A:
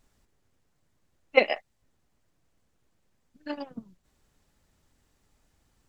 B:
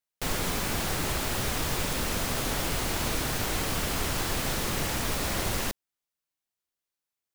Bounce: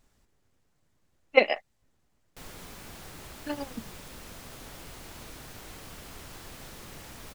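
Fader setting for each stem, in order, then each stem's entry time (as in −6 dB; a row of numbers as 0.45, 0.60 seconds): +0.5, −16.0 decibels; 0.00, 2.15 seconds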